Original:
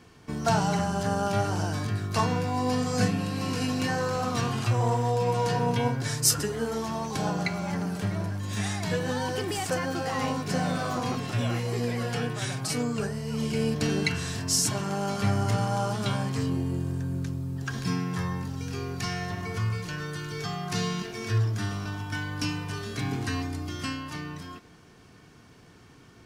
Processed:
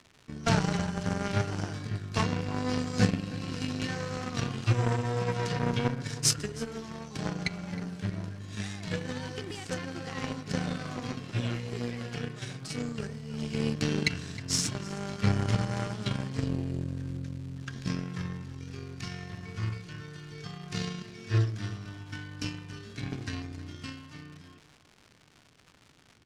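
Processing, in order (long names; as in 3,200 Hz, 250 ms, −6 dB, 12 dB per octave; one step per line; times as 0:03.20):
harmonic generator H 5 −18 dB, 7 −14 dB, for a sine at −8.5 dBFS
parametric band 830 Hz −8.5 dB 1.5 octaves
surface crackle 230 per second −42 dBFS
high-frequency loss of the air 67 metres
slap from a distant wall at 54 metres, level −16 dB
level +2.5 dB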